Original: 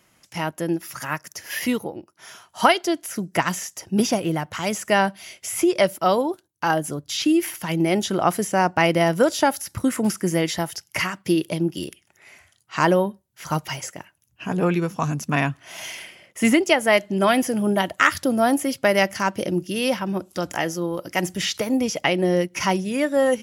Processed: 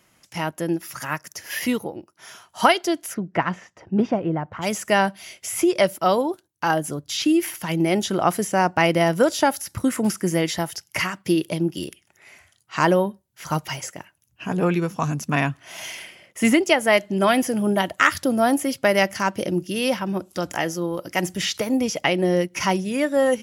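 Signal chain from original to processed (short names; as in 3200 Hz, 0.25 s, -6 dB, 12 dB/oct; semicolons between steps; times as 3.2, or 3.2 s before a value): 3.13–4.61 LPF 2300 Hz -> 1200 Hz 12 dB/oct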